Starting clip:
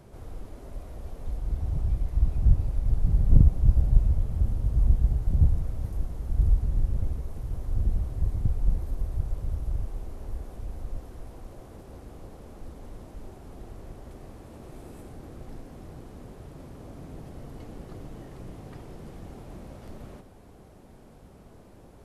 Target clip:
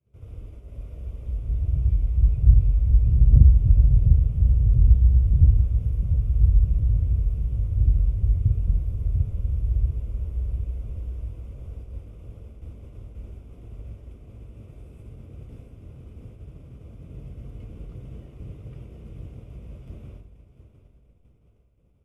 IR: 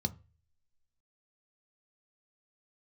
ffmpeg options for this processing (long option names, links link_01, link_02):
-filter_complex "[0:a]aecho=1:1:698|1396|2094|2792|3490|4188:0.447|0.237|0.125|0.0665|0.0352|0.0187,agate=range=-33dB:threshold=-38dB:ratio=3:detection=peak[link_01];[1:a]atrim=start_sample=2205,asetrate=25578,aresample=44100[link_02];[link_01][link_02]afir=irnorm=-1:irlink=0,volume=-13dB"